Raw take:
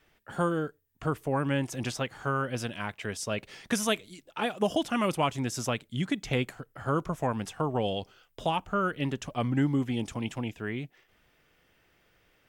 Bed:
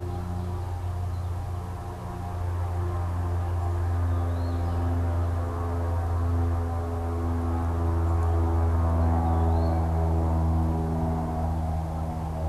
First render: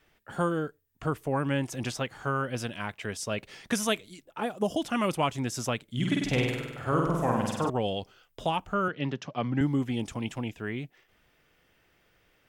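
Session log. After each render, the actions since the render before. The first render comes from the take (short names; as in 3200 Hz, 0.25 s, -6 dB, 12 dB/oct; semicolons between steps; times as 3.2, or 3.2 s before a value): 4.24–4.81 bell 5100 Hz -> 1400 Hz -9 dB 1.8 oct; 5.83–7.7 flutter echo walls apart 8.4 m, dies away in 1.1 s; 8.88–9.61 elliptic band-pass 130–5500 Hz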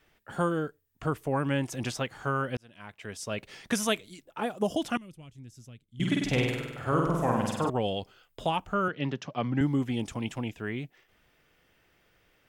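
2.57–3.53 fade in; 4.97–6 passive tone stack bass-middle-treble 10-0-1; 7.53–8.55 notch 5800 Hz, Q 8.5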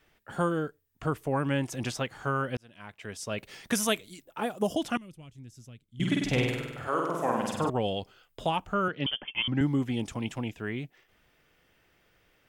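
3.38–4.74 high shelf 12000 Hz +11 dB; 6.86–7.53 HPF 460 Hz -> 190 Hz; 9.06–9.48 inverted band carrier 3300 Hz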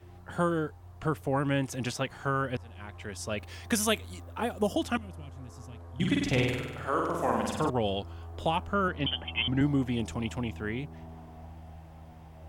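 add bed -19 dB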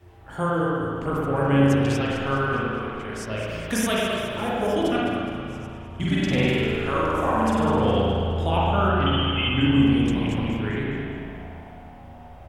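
frequency-shifting echo 0.208 s, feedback 50%, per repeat -47 Hz, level -11 dB; spring tank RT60 2.2 s, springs 36/54 ms, chirp 75 ms, DRR -6 dB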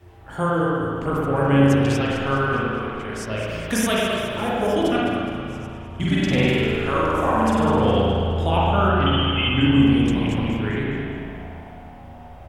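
gain +2.5 dB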